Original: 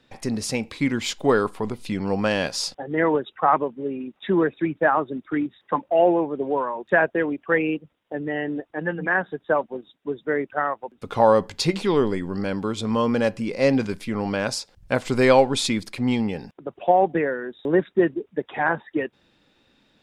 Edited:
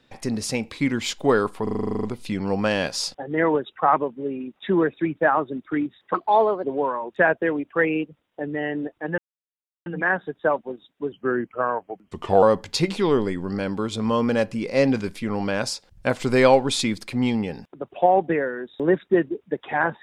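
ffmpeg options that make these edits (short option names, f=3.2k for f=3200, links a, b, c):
-filter_complex "[0:a]asplit=16[a][b][c][d][e][f][g][h][i][j][k][l][m][n][o][p];[a]atrim=end=1.672[q];[b]atrim=start=1.628:end=1.672[r];[c]atrim=start=1.628:end=1.672[s];[d]atrim=start=1.628:end=1.672[t];[e]atrim=start=1.628:end=1.672[u];[f]atrim=start=1.628:end=1.672[v];[g]atrim=start=1.628:end=1.672[w];[h]atrim=start=1.628:end=1.672[x];[i]atrim=start=1.628:end=1.672[y];[j]atrim=start=1.628:end=1.672[z];[k]atrim=start=1.628:end=5.744[aa];[l]atrim=start=5.74:end=6.37,asetpts=PTS-STARTPTS,asetrate=55566,aresample=44100[ab];[m]atrim=start=6.366:end=8.91,asetpts=PTS-STARTPTS,afade=t=out:st=2.54:d=0.004:c=hsin,apad=pad_dur=0.68[ac];[n]atrim=start=8.91:end=10.174,asetpts=PTS-STARTPTS,afade=t=in:d=0.004:c=hsin[ad];[o]atrim=start=10.17:end=11.28,asetpts=PTS-STARTPTS,asetrate=37485,aresample=44100,atrim=end_sample=57589,asetpts=PTS-STARTPTS[ae];[p]atrim=start=11.276[af];[q][r]acrossfade=d=0.004:c1=hsin:c2=hsin[ag];[ag][s]acrossfade=d=0.004:c1=hsin:c2=hsin[ah];[ah][t]acrossfade=d=0.004:c1=hsin:c2=hsin[ai];[ai][u]acrossfade=d=0.004:c1=hsin:c2=hsin[aj];[aj][v]acrossfade=d=0.004:c1=hsin:c2=hsin[ak];[ak][w]acrossfade=d=0.004:c1=hsin:c2=hsin[al];[al][x]acrossfade=d=0.004:c1=hsin:c2=hsin[am];[am][y]acrossfade=d=0.004:c1=hsin:c2=hsin[an];[an][z]acrossfade=d=0.004:c1=hsin:c2=hsin[ao];[ao][aa]acrossfade=d=0.004:c1=hsin:c2=hsin[ap];[ap][ab]acrossfade=d=0.004:c1=hsin:c2=hsin[aq];[ac][ad]concat=n=2:v=0:a=1[ar];[aq][ar]acrossfade=d=0.004:c1=hsin:c2=hsin[as];[as][ae]acrossfade=d=0.004:c1=hsin:c2=hsin[at];[at][af]acrossfade=d=0.004:c1=hsin:c2=hsin"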